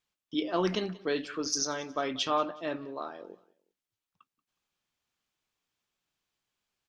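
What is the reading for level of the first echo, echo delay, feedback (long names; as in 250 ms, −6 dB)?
−21.5 dB, 183 ms, 34%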